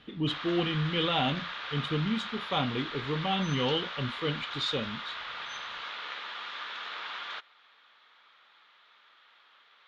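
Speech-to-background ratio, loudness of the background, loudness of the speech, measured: 6.5 dB, −37.5 LKFS, −31.0 LKFS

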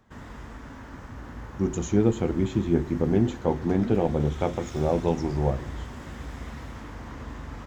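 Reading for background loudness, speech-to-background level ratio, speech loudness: −39.5 LKFS, 13.5 dB, −26.0 LKFS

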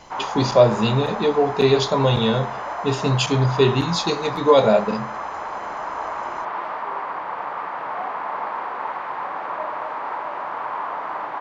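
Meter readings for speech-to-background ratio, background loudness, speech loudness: 9.0 dB, −28.5 LKFS, −19.5 LKFS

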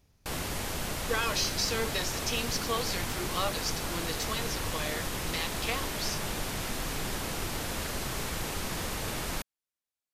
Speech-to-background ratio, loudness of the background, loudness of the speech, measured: 0.5 dB, −34.0 LKFS, −33.5 LKFS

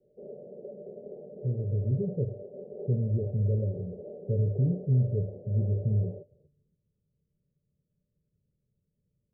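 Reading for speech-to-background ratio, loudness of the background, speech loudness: 14.5 dB, −44.0 LKFS, −29.5 LKFS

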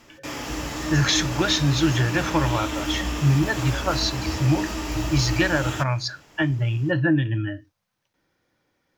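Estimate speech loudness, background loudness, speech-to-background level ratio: −23.5 LKFS, −29.0 LKFS, 5.5 dB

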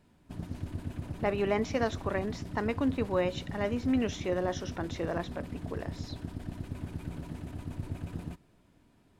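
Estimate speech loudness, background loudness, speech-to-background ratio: −32.5 LKFS, −40.5 LKFS, 8.0 dB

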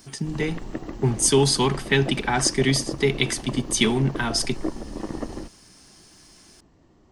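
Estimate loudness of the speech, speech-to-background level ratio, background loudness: −22.5 LKFS, 12.0 dB, −34.5 LKFS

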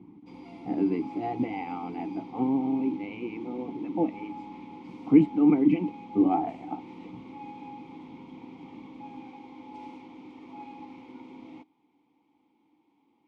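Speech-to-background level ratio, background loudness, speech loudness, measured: 18.5 dB, −45.5 LKFS, −27.0 LKFS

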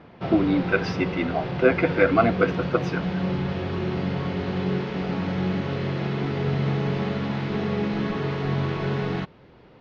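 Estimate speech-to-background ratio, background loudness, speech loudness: 4.0 dB, −27.5 LKFS, −23.5 LKFS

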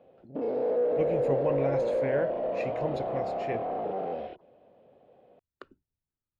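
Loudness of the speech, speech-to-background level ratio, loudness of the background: −34.5 LKFS, −4.5 dB, −30.0 LKFS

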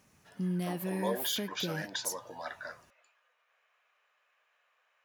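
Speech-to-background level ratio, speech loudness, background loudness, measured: −1.5 dB, −38.0 LKFS, −36.5 LKFS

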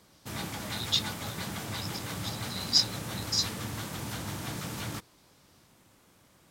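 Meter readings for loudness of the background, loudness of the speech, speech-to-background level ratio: −36.5 LKFS, −30.5 LKFS, 6.0 dB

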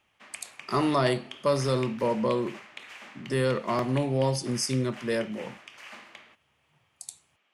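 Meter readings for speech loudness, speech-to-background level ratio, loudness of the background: −27.5 LKFS, 17.5 dB, −45.0 LKFS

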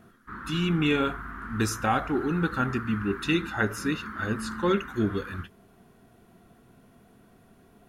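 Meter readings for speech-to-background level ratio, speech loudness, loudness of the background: 11.0 dB, −28.0 LKFS, −39.0 LKFS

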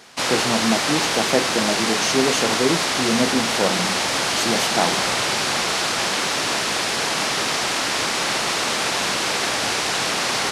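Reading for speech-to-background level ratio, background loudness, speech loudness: −4.0 dB, −20.0 LKFS, −24.0 LKFS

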